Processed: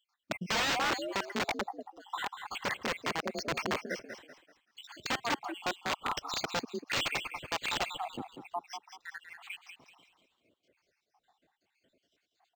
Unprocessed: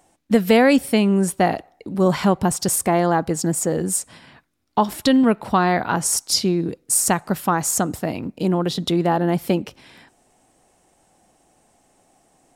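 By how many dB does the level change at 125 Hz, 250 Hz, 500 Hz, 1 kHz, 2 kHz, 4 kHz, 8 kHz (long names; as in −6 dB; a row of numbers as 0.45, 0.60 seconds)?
−24.0, −24.0, −19.0, −13.5, −6.5, −7.5, −21.0 decibels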